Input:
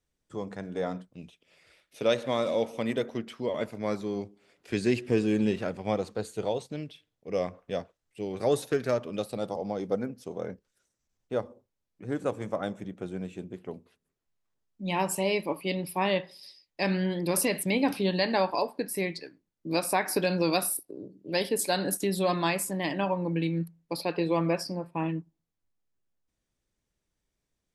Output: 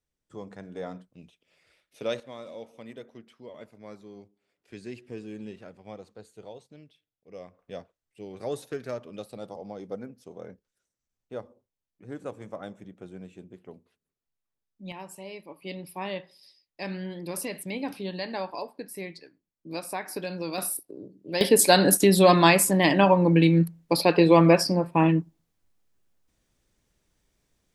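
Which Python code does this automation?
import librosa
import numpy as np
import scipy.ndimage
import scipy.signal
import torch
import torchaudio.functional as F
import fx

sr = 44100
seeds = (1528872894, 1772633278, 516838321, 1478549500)

y = fx.gain(x, sr, db=fx.steps((0.0, -5.0), (2.2, -14.0), (7.59, -7.0), (14.92, -14.0), (15.62, -7.0), (20.58, -0.5), (21.41, 10.0)))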